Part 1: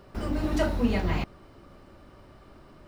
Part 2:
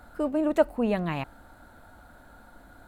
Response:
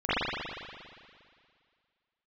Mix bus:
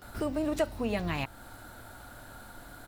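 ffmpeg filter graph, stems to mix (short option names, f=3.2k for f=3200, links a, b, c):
-filter_complex "[0:a]equalizer=f=110:w=4.1:g=13.5,volume=-8.5dB[a];[1:a]volume=-1,adelay=18,volume=1.5dB[b];[a][b]amix=inputs=2:normalize=0,highshelf=f=2.5k:g=11,acompressor=threshold=-33dB:ratio=2"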